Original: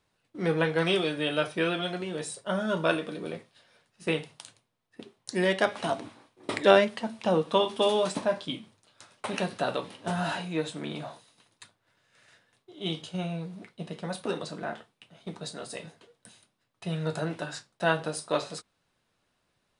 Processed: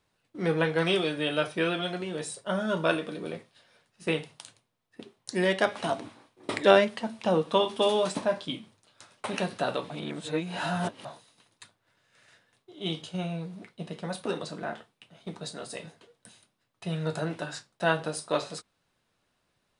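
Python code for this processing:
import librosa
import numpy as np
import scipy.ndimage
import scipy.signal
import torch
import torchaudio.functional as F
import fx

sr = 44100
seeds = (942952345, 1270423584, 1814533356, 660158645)

y = fx.edit(x, sr, fx.reverse_span(start_s=9.9, length_s=1.15), tone=tone)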